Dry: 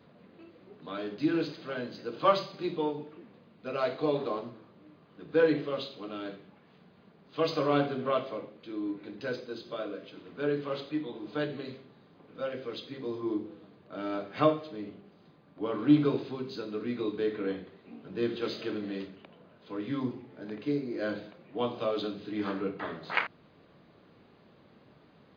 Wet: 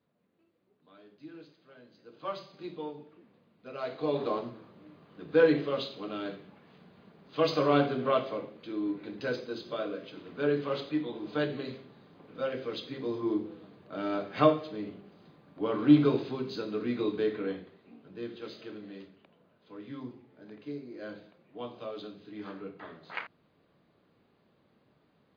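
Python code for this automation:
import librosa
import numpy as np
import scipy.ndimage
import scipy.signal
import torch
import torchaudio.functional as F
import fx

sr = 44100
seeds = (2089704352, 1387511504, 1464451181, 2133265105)

y = fx.gain(x, sr, db=fx.line((1.77, -19.5), (2.62, -8.0), (3.74, -8.0), (4.29, 2.0), (17.15, 2.0), (18.26, -9.0)))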